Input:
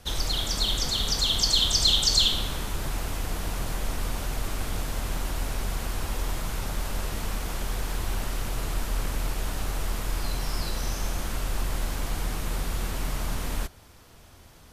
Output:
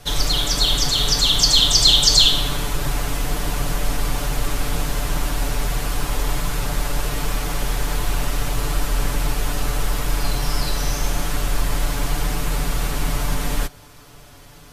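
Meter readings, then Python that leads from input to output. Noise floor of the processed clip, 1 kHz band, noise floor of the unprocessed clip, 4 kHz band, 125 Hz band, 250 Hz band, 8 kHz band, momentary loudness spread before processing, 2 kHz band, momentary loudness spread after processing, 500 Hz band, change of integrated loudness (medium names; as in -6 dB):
-44 dBFS, +8.0 dB, -51 dBFS, +7.5 dB, +7.0 dB, +7.5 dB, +8.0 dB, 12 LU, +8.0 dB, 12 LU, +7.5 dB, +7.5 dB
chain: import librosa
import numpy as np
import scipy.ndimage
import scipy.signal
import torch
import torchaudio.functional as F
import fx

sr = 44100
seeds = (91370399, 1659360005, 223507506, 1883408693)

y = x + 0.75 * np.pad(x, (int(6.9 * sr / 1000.0), 0))[:len(x)]
y = F.gain(torch.from_numpy(y), 6.0).numpy()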